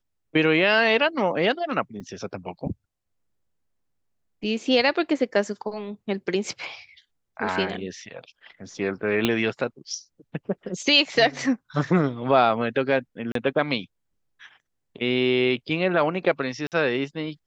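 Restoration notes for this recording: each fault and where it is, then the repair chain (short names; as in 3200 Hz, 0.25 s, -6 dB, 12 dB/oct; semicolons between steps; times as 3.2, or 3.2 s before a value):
2 gap 3.9 ms
9.25 pop -7 dBFS
13.32–13.35 gap 33 ms
16.67–16.72 gap 48 ms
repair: de-click; interpolate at 2, 3.9 ms; interpolate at 13.32, 33 ms; interpolate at 16.67, 48 ms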